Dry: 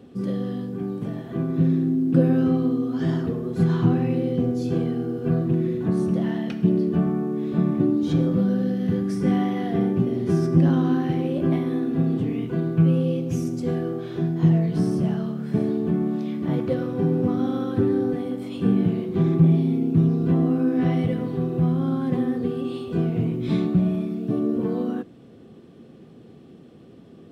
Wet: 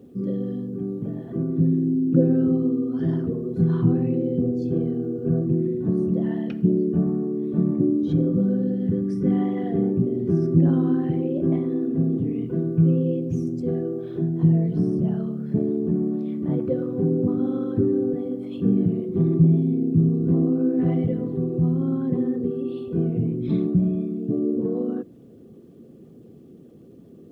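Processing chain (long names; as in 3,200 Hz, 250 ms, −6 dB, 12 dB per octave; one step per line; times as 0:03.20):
spectral envelope exaggerated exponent 1.5
bit reduction 12 bits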